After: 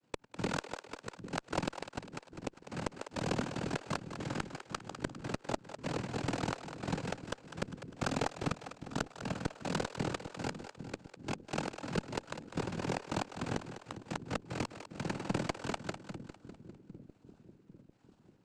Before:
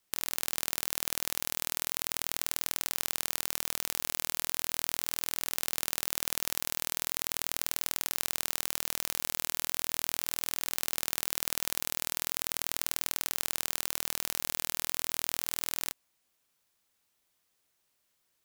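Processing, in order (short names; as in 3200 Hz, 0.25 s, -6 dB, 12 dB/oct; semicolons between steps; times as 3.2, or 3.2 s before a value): Chebyshev low-pass 1200 Hz, order 6; bell 180 Hz +10.5 dB 0.4 oct; decimation with a swept rate 41×, swing 100% 1.2 Hz; noise vocoder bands 8; pump 94 bpm, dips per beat 2, -8 dB, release 79 ms; flipped gate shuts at -34 dBFS, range -42 dB; added harmonics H 2 -9 dB, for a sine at -31 dBFS; on a send: split-band echo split 410 Hz, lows 0.798 s, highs 0.201 s, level -10 dB; on the sum: gain +14 dB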